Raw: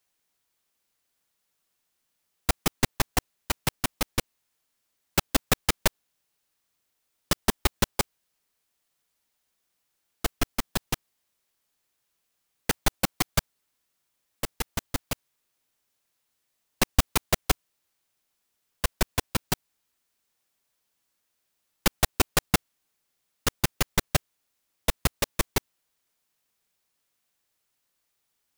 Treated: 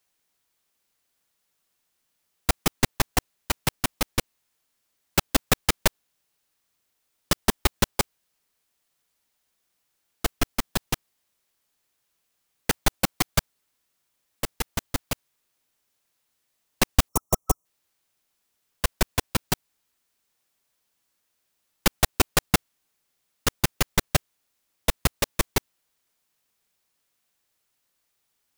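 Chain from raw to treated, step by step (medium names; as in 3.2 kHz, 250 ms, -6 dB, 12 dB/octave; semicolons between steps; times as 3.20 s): time-frequency box 17.08–17.65 s, 1.3–5.5 kHz -18 dB; trim +2 dB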